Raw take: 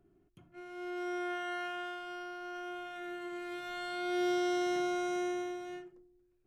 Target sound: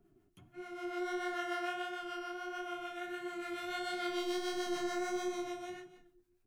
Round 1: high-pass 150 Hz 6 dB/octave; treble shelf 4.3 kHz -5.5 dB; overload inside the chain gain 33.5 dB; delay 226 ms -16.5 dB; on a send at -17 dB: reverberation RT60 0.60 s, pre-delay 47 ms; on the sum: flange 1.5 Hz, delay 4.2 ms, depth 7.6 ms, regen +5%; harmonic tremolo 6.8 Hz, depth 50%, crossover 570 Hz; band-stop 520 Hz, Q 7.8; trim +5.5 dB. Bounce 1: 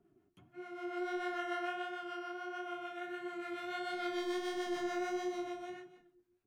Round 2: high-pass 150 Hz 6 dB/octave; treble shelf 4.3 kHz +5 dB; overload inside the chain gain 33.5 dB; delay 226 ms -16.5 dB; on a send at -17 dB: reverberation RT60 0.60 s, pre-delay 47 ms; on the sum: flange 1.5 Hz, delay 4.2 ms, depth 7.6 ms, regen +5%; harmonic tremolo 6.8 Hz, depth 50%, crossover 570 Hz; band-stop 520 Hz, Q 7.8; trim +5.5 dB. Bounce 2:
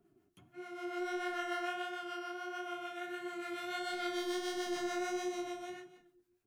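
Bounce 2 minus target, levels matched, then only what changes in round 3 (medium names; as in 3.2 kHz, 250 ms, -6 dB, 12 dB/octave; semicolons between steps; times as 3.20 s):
125 Hz band -3.5 dB
remove: high-pass 150 Hz 6 dB/octave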